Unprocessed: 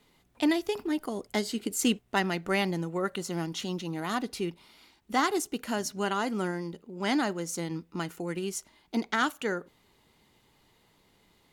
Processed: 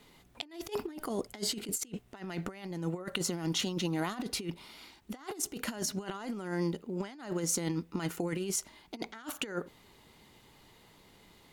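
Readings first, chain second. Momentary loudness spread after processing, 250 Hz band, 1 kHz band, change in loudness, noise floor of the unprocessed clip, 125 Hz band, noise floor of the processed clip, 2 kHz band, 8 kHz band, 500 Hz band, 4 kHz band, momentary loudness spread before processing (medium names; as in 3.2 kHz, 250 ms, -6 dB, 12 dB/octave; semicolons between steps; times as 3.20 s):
11 LU, -6.0 dB, -11.0 dB, -5.0 dB, -66 dBFS, -1.0 dB, -61 dBFS, -10.0 dB, +1.5 dB, -6.0 dB, -2.5 dB, 8 LU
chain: compressor with a negative ratio -35 dBFS, ratio -0.5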